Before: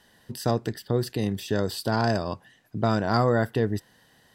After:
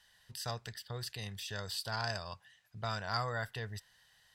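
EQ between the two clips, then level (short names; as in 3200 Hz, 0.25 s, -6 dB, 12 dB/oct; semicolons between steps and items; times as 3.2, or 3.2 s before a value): passive tone stack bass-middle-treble 10-0-10; high shelf 9800 Hz -10.5 dB; -1.0 dB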